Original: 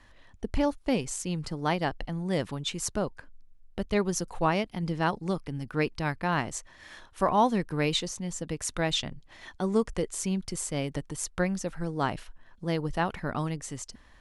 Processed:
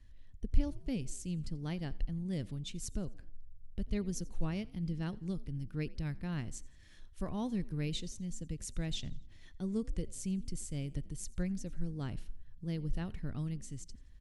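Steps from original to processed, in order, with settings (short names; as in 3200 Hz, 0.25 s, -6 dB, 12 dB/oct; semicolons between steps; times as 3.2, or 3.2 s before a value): passive tone stack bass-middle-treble 10-0-1; on a send: frequency-shifting echo 86 ms, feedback 44%, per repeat +44 Hz, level -23 dB; on the sum: gain +9.5 dB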